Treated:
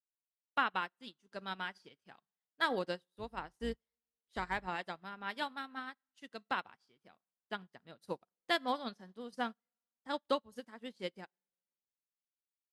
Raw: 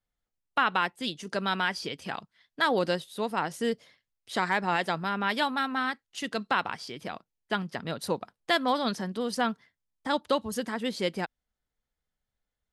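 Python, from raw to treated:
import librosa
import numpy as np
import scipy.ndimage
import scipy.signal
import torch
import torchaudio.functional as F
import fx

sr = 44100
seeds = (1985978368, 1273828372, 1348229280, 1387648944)

y = fx.octave_divider(x, sr, octaves=2, level_db=-4.0, at=(3.13, 4.67))
y = fx.rev_double_slope(y, sr, seeds[0], early_s=0.47, late_s=2.3, knee_db=-16, drr_db=15.0)
y = fx.upward_expand(y, sr, threshold_db=-46.0, expansion=2.5)
y = y * librosa.db_to_amplitude(-5.0)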